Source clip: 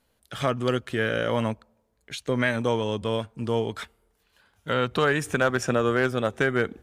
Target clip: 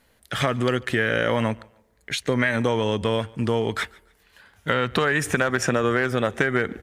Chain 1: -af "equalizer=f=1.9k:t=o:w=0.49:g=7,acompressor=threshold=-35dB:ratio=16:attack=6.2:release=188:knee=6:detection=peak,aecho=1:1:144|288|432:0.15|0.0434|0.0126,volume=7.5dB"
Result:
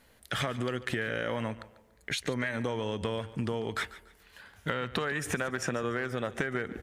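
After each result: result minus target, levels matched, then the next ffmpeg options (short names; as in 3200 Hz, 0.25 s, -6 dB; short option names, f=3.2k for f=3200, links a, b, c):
compressor: peak gain reduction +11 dB; echo-to-direct +8 dB
-af "equalizer=f=1.9k:t=o:w=0.49:g=7,acompressor=threshold=-23.5dB:ratio=16:attack=6.2:release=188:knee=6:detection=peak,aecho=1:1:144|288|432:0.15|0.0434|0.0126,volume=7.5dB"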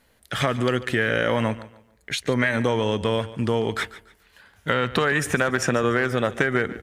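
echo-to-direct +8 dB
-af "equalizer=f=1.9k:t=o:w=0.49:g=7,acompressor=threshold=-23.5dB:ratio=16:attack=6.2:release=188:knee=6:detection=peak,aecho=1:1:144|288:0.0596|0.0173,volume=7.5dB"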